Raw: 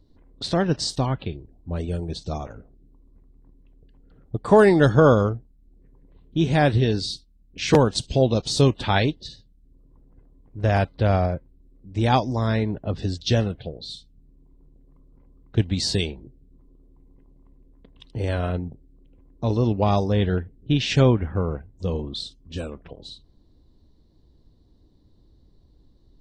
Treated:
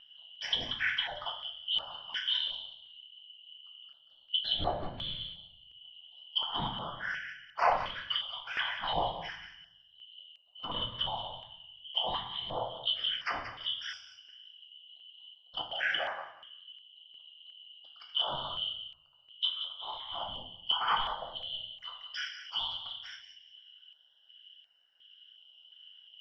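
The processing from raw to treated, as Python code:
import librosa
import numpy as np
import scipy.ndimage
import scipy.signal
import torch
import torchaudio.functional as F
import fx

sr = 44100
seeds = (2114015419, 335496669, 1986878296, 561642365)

p1 = fx.band_shuffle(x, sr, order='2413')
p2 = 10.0 ** (-11.0 / 20.0) * (np.abs((p1 / 10.0 ** (-11.0 / 20.0) + 3.0) % 4.0 - 2.0) - 1.0)
p3 = p1 + F.gain(torch.from_numpy(p2), -8.0).numpy()
p4 = fx.low_shelf_res(p3, sr, hz=510.0, db=-11.5, q=3.0)
p5 = fx.env_lowpass_down(p4, sr, base_hz=950.0, full_db=-15.0)
p6 = fx.whisperise(p5, sr, seeds[0])
p7 = fx.vibrato(p6, sr, rate_hz=2.3, depth_cents=9.1)
p8 = fx.air_absorb(p7, sr, metres=340.0)
p9 = p8 + fx.echo_thinned(p8, sr, ms=182, feedback_pct=22, hz=1000.0, wet_db=-9, dry=0)
p10 = fx.room_shoebox(p9, sr, seeds[1], volume_m3=120.0, walls='mixed', distance_m=0.71)
y = fx.filter_held_notch(p10, sr, hz=2.8, low_hz=430.0, high_hz=3300.0)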